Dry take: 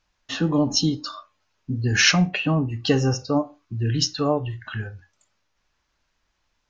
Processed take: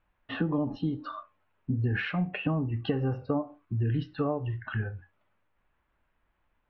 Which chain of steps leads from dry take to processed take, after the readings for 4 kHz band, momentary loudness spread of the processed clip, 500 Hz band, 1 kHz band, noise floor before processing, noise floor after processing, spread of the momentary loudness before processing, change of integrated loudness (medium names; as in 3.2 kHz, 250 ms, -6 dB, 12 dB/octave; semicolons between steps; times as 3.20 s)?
-20.5 dB, 10 LU, -7.5 dB, -8.0 dB, -73 dBFS, -76 dBFS, 16 LU, -9.0 dB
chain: compression 12:1, threshold -24 dBFS, peak gain reduction 12.5 dB; Bessel low-pass 1.8 kHz, order 8